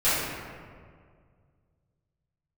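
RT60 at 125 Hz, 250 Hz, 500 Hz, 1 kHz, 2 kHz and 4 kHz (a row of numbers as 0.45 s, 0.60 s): 3.0 s, 2.2 s, 2.1 s, 1.8 s, 1.5 s, 1.1 s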